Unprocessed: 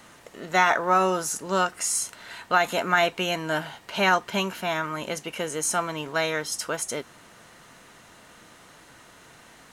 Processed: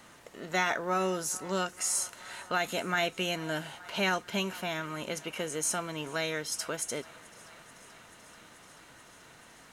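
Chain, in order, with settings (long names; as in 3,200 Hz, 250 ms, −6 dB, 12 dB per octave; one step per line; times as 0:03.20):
feedback echo with a high-pass in the loop 435 ms, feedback 83%, high-pass 440 Hz, level −24 dB
dynamic equaliser 1,000 Hz, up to −8 dB, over −35 dBFS, Q 0.96
level −4 dB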